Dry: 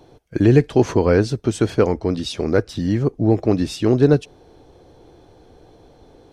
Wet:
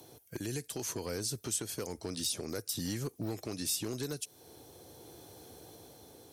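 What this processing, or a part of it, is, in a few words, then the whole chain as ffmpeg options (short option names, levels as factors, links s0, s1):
FM broadcast chain: -filter_complex "[0:a]highpass=f=76:w=0.5412,highpass=f=76:w=1.3066,dynaudnorm=f=230:g=9:m=2.24,acrossover=split=1200|4700[s0][s1][s2];[s0]acompressor=threshold=0.0447:ratio=4[s3];[s1]acompressor=threshold=0.00708:ratio=4[s4];[s2]acompressor=threshold=0.00891:ratio=4[s5];[s3][s4][s5]amix=inputs=3:normalize=0,aemphasis=mode=production:type=50fm,alimiter=limit=0.112:level=0:latency=1:release=388,asoftclip=type=hard:threshold=0.075,lowpass=f=15000:w=0.5412,lowpass=f=15000:w=1.3066,aemphasis=mode=production:type=50fm,volume=0.447"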